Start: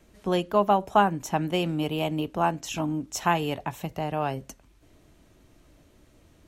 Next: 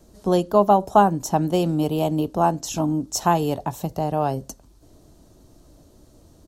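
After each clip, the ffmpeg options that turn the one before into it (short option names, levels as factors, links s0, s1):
-af "firequalizer=gain_entry='entry(750,0);entry(2200,-15);entry(4400,1)':delay=0.05:min_phase=1,volume=2"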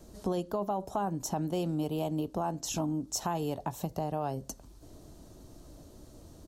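-af "alimiter=limit=0.251:level=0:latency=1:release=11,acompressor=threshold=0.02:ratio=2.5"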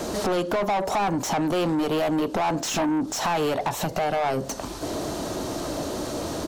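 -filter_complex "[0:a]acompressor=threshold=0.01:ratio=4,asplit=2[s0][s1];[s1]highpass=f=720:p=1,volume=35.5,asoftclip=type=tanh:threshold=0.0631[s2];[s0][s2]amix=inputs=2:normalize=0,lowpass=f=2800:p=1,volume=0.501,volume=2.66"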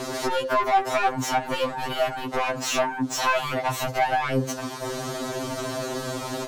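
-filter_complex "[0:a]acrossover=split=400|690|2200[s0][s1][s2][s3];[s2]crystalizer=i=8:c=0[s4];[s0][s1][s4][s3]amix=inputs=4:normalize=0,afftfilt=real='re*2.45*eq(mod(b,6),0)':imag='im*2.45*eq(mod(b,6),0)':win_size=2048:overlap=0.75,volume=1.26"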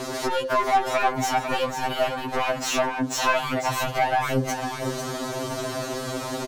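-af "aecho=1:1:498:0.398"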